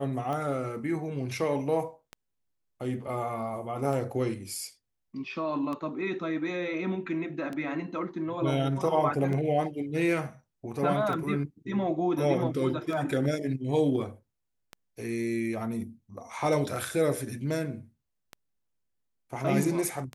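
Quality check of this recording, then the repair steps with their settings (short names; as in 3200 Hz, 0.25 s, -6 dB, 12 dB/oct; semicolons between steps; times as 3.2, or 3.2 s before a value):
tick 33 1/3 rpm -23 dBFS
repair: de-click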